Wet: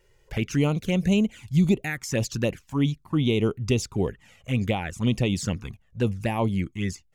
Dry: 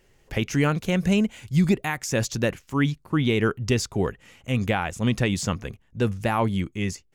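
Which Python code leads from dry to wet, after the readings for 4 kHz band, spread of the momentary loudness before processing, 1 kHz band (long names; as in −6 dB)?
−1.5 dB, 7 LU, −5.5 dB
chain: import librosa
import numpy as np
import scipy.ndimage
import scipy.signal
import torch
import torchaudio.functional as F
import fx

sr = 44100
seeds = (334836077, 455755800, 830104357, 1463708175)

y = fx.env_flanger(x, sr, rest_ms=2.1, full_db=-18.5)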